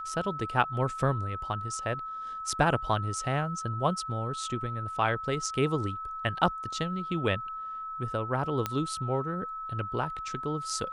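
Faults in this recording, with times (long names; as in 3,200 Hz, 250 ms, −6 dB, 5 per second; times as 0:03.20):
whistle 1,300 Hz −35 dBFS
0:08.66: click −14 dBFS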